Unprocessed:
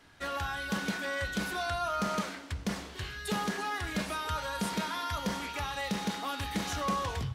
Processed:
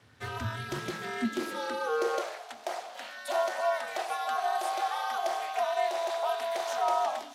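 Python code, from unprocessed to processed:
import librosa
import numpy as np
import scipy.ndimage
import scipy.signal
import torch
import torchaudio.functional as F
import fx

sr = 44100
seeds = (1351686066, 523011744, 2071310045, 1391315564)

y = x * np.sin(2.0 * np.pi * 160.0 * np.arange(len(x)) / sr)
y = fx.echo_wet_highpass(y, sr, ms=310, feedback_pct=78, hz=2900.0, wet_db=-15.0)
y = fx.filter_sweep_highpass(y, sr, from_hz=100.0, to_hz=700.0, start_s=0.37, end_s=2.46, q=7.7)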